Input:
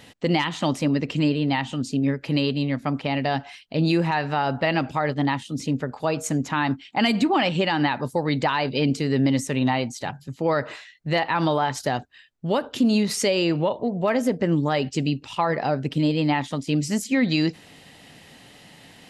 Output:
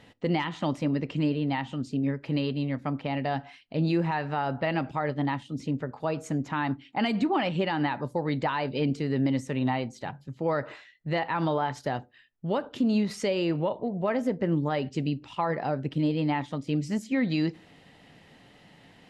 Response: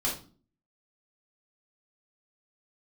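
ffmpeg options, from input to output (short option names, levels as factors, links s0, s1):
-filter_complex "[0:a]lowpass=f=2200:p=1,asplit=2[s0][s1];[1:a]atrim=start_sample=2205,asetrate=74970,aresample=44100[s2];[s1][s2]afir=irnorm=-1:irlink=0,volume=0.1[s3];[s0][s3]amix=inputs=2:normalize=0,volume=0.562"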